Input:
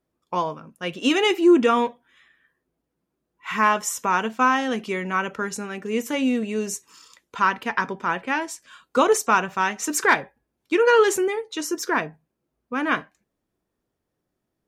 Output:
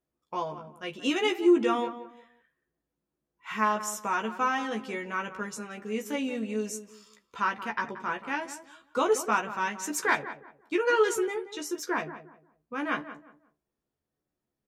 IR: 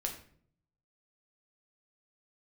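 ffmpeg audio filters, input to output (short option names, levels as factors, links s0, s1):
-filter_complex "[0:a]asplit=2[s0][s1];[s1]adelay=14,volume=0.631[s2];[s0][s2]amix=inputs=2:normalize=0,asplit=2[s3][s4];[s4]adelay=179,lowpass=f=1500:p=1,volume=0.266,asplit=2[s5][s6];[s6]adelay=179,lowpass=f=1500:p=1,volume=0.29,asplit=2[s7][s8];[s8]adelay=179,lowpass=f=1500:p=1,volume=0.29[s9];[s3][s5][s7][s9]amix=inputs=4:normalize=0,volume=0.355"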